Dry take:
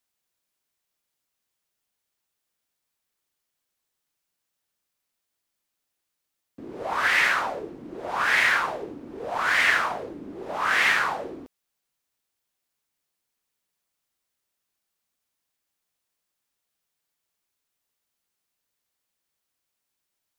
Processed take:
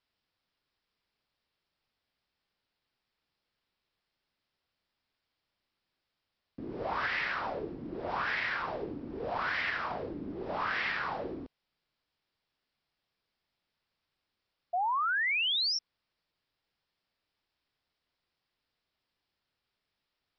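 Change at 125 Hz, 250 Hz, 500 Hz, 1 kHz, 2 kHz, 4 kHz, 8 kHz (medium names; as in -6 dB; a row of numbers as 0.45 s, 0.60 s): +0.5 dB, -2.0 dB, -4.5 dB, -5.5 dB, -9.5 dB, -1.5 dB, under -10 dB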